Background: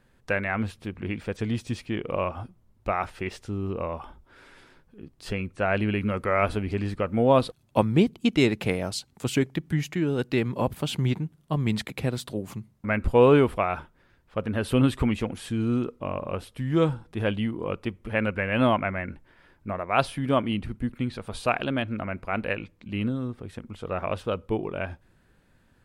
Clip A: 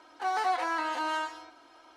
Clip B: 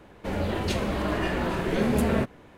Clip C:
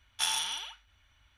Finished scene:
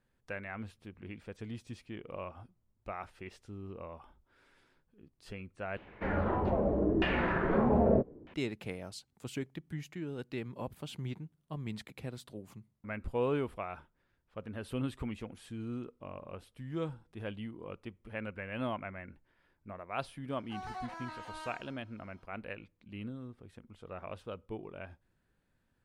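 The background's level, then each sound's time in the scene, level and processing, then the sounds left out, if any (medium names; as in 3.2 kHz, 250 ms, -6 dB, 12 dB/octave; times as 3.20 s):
background -14.5 dB
5.77 s: replace with B -4.5 dB + LFO low-pass saw down 0.8 Hz 320–3100 Hz
20.30 s: add A -14.5 dB
not used: C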